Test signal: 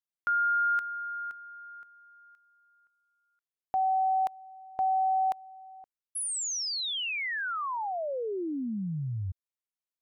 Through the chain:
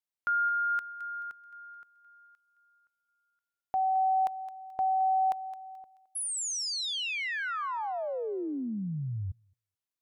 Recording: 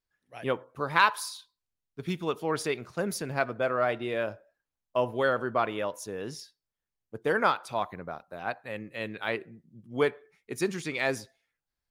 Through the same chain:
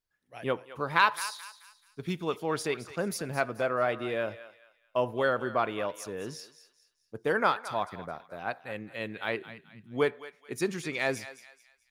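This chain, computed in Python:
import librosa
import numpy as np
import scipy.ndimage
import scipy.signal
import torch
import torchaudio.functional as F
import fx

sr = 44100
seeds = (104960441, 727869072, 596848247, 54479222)

y = fx.echo_thinned(x, sr, ms=216, feedback_pct=37, hz=920.0, wet_db=-12.5)
y = y * 10.0 ** (-1.0 / 20.0)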